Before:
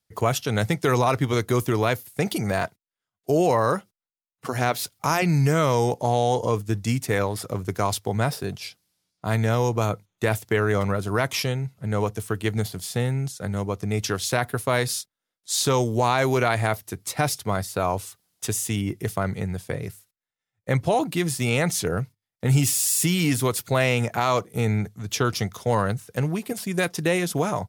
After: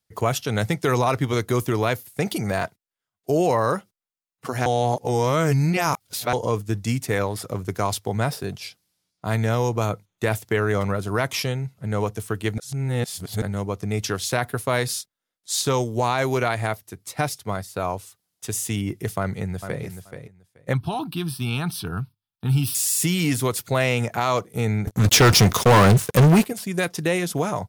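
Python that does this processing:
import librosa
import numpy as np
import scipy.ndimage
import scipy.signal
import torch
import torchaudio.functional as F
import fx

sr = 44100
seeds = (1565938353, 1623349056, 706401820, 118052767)

y = fx.upward_expand(x, sr, threshold_db=-30.0, expansion=1.5, at=(15.61, 18.53))
y = fx.echo_throw(y, sr, start_s=19.19, length_s=0.65, ms=430, feedback_pct=15, wet_db=-9.0)
y = fx.fixed_phaser(y, sr, hz=2000.0, stages=6, at=(20.73, 22.75))
y = fx.leveller(y, sr, passes=5, at=(24.87, 26.46))
y = fx.edit(y, sr, fx.reverse_span(start_s=4.66, length_s=1.67),
    fx.reverse_span(start_s=12.58, length_s=0.84), tone=tone)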